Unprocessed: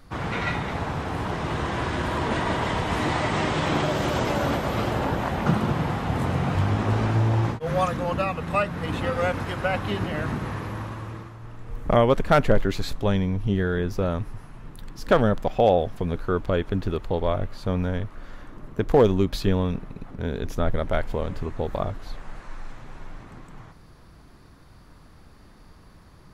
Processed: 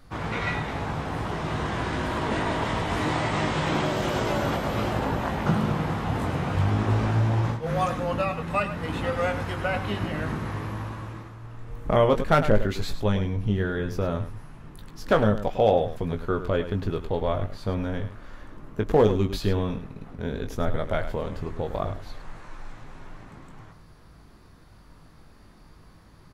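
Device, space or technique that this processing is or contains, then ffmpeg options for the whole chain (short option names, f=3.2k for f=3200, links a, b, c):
slapback doubling: -filter_complex "[0:a]asplit=3[a][b][c];[b]adelay=19,volume=-7dB[d];[c]adelay=104,volume=-11dB[e];[a][d][e]amix=inputs=3:normalize=0,volume=-2.5dB"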